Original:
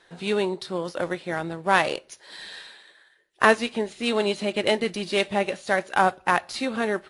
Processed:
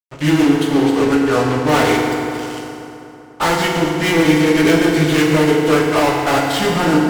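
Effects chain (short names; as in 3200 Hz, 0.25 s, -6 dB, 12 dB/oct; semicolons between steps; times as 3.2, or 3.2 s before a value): pitch shift by moving bins -4.5 st; fuzz box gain 32 dB, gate -40 dBFS; FDN reverb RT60 3.2 s, high-frequency decay 0.6×, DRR -1.5 dB; gain -2 dB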